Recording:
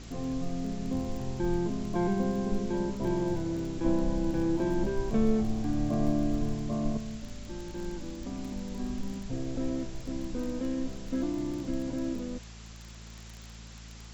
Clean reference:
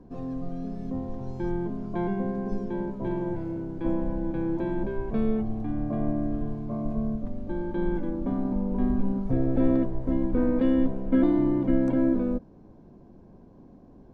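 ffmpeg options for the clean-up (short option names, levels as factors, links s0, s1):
-af "adeclick=t=4,bandreject=f=55.7:t=h:w=4,bandreject=f=111.4:t=h:w=4,bandreject=f=167.1:t=h:w=4,bandreject=f=222.8:t=h:w=4,afwtdn=0.0035,asetnsamples=n=441:p=0,asendcmd='6.97 volume volume 10dB',volume=1"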